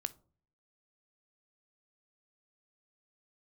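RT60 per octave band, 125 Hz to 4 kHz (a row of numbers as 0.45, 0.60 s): 0.75, 0.60, 0.55, 0.40, 0.25, 0.20 s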